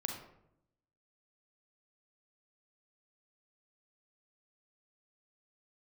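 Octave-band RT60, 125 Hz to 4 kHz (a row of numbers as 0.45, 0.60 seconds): 1.1, 1.0, 0.85, 0.70, 0.55, 0.40 seconds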